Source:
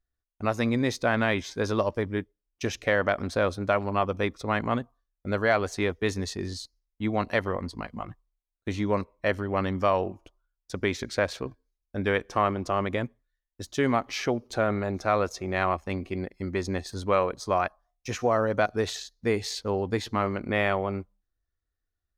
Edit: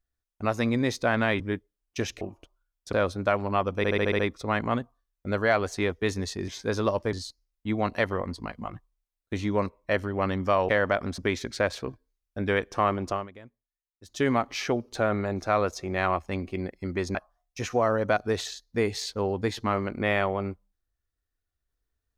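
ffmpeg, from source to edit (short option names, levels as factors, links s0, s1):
-filter_complex "[0:a]asplit=17[s0][s1][s2][s3][s4][s5][s6][s7][s8][s9][s10][s11][s12][s13][s14][s15][s16];[s0]atrim=end=1.402[s17];[s1]atrim=start=2.048:end=2.862[s18];[s2]atrim=start=10.038:end=10.762[s19];[s3]atrim=start=3.348:end=4.262[s20];[s4]atrim=start=4.188:end=4.262[s21];[s5]atrim=start=4.188:end=4.262[s22];[s6]atrim=start=4.188:end=4.262[s23];[s7]atrim=start=4.188:end=4.262[s24];[s8]atrim=start=4.188:end=4.262[s25];[s9]atrim=start=4.188:end=6.482[s26];[s10]atrim=start=1.398:end=2.052[s27];[s11]atrim=start=6.478:end=10.042[s28];[s12]atrim=start=2.858:end=3.352[s29];[s13]atrim=start=10.758:end=12.91,asetpts=PTS-STARTPTS,afade=t=out:st=1.942:d=0.21:c=qua:silence=0.11885[s30];[s14]atrim=start=12.91:end=13.54,asetpts=PTS-STARTPTS,volume=0.119[s31];[s15]atrim=start=13.54:end=16.732,asetpts=PTS-STARTPTS,afade=t=in:d=0.21:c=qua:silence=0.11885[s32];[s16]atrim=start=17.638[s33];[s17][s18]acrossfade=d=0.004:c1=hsin:c2=hsin[s34];[s34][s19]acrossfade=d=0.004:c1=hsin:c2=hsin[s35];[s35][s20]acrossfade=d=0.004:c1=hsin:c2=hsin[s36];[s36][s21]acrossfade=d=0.004:c1=hsin:c2=hsin[s37];[s37][s22]acrossfade=d=0.004:c1=hsin:c2=hsin[s38];[s38][s23]acrossfade=d=0.004:c1=hsin:c2=hsin[s39];[s39][s24]acrossfade=d=0.004:c1=hsin:c2=hsin[s40];[s40][s25]acrossfade=d=0.004:c1=hsin:c2=hsin[s41];[s41][s26]acrossfade=d=0.004:c1=hsin:c2=hsin[s42];[s42][s27]acrossfade=d=0.004:c1=hsin:c2=hsin[s43];[s43][s28]acrossfade=d=0.004:c1=hsin:c2=hsin[s44];[s44][s29]acrossfade=d=0.004:c1=hsin:c2=hsin[s45];[s30][s31][s32]concat=n=3:v=0:a=1[s46];[s45][s46]acrossfade=d=0.004:c1=hsin:c2=hsin[s47];[s47][s33]acrossfade=d=0.004:c1=hsin:c2=hsin"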